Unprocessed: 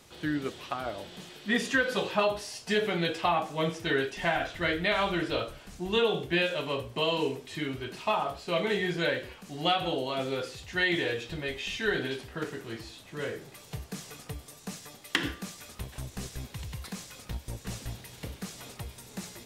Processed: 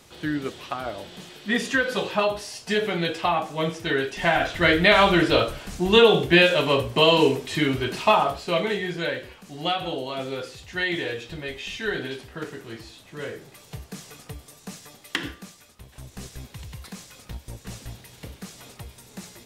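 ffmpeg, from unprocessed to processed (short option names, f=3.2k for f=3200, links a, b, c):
-af "volume=20dB,afade=t=in:st=4.02:d=0.8:silence=0.421697,afade=t=out:st=7.98:d=0.82:silence=0.316228,afade=t=out:st=15.07:d=0.7:silence=0.316228,afade=t=in:st=15.77:d=0.45:silence=0.354813"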